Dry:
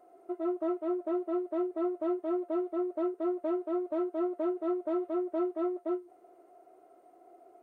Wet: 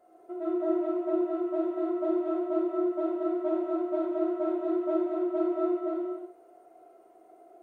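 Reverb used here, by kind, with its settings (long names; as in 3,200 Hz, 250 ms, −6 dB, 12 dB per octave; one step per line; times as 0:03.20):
reverb whose tail is shaped and stops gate 400 ms falling, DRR −5.5 dB
level −4 dB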